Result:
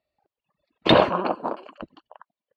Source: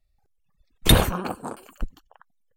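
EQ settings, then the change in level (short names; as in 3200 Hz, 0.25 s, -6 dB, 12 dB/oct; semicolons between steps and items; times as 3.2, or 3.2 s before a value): air absorption 350 m; speaker cabinet 230–8500 Hz, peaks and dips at 330 Hz +4 dB, 610 Hz +10 dB, 1000 Hz +7 dB, 2800 Hz +6 dB, 4500 Hz +9 dB; +3.0 dB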